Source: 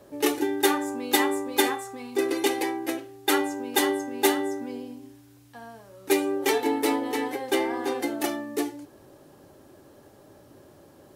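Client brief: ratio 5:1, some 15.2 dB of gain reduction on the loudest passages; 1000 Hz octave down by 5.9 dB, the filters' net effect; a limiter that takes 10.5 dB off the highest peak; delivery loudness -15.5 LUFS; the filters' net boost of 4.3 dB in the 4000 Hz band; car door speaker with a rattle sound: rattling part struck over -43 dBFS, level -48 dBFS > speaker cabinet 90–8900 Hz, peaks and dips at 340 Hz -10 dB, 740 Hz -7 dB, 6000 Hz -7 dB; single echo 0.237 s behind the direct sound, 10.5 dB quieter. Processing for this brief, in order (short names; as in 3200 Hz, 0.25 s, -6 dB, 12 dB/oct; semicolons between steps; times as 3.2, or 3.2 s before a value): bell 1000 Hz -3.5 dB; bell 4000 Hz +6 dB; compressor 5:1, threshold -34 dBFS; limiter -29 dBFS; echo 0.237 s -10.5 dB; rattling part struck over -43 dBFS, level -48 dBFS; speaker cabinet 90–8900 Hz, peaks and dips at 340 Hz -10 dB, 740 Hz -7 dB, 6000 Hz -7 dB; gain +26.5 dB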